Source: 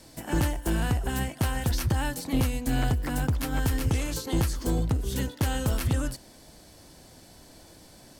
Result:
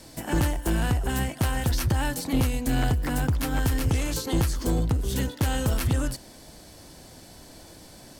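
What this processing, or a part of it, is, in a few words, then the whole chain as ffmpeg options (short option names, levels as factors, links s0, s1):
parallel distortion: -filter_complex "[0:a]asplit=2[s0][s1];[s1]asoftclip=type=hard:threshold=0.0282,volume=0.596[s2];[s0][s2]amix=inputs=2:normalize=0"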